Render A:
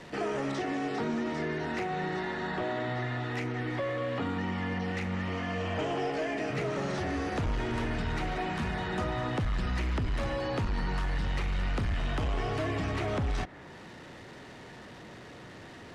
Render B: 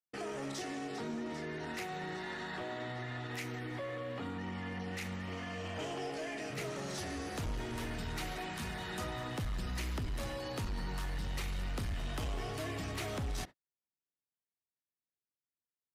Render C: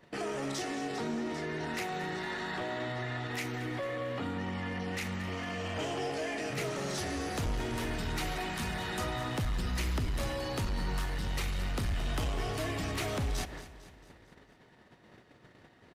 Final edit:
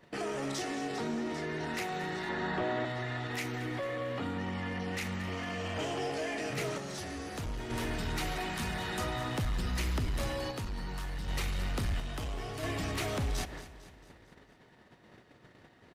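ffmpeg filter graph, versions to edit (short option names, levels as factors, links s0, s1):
-filter_complex "[1:a]asplit=3[s0][s1][s2];[2:a]asplit=5[s3][s4][s5][s6][s7];[s3]atrim=end=2.292[s8];[0:a]atrim=start=2.288:end=2.852[s9];[s4]atrim=start=2.848:end=6.782[s10];[s0]atrim=start=6.778:end=7.702[s11];[s5]atrim=start=7.698:end=10.512[s12];[s1]atrim=start=10.508:end=11.282[s13];[s6]atrim=start=11.278:end=12.002[s14];[s2]atrim=start=11.998:end=12.632[s15];[s7]atrim=start=12.628[s16];[s8][s9]acrossfade=d=0.004:c1=hsin:c2=hsin[s17];[s17][s10]acrossfade=d=0.004:c1=hsin:c2=hsin[s18];[s18][s11]acrossfade=d=0.004:c1=hsin:c2=hsin[s19];[s19][s12]acrossfade=d=0.004:c1=hsin:c2=hsin[s20];[s20][s13]acrossfade=d=0.004:c1=hsin:c2=hsin[s21];[s21][s14]acrossfade=d=0.004:c1=hsin:c2=hsin[s22];[s22][s15]acrossfade=d=0.004:c1=hsin:c2=hsin[s23];[s23][s16]acrossfade=d=0.004:c1=hsin:c2=hsin"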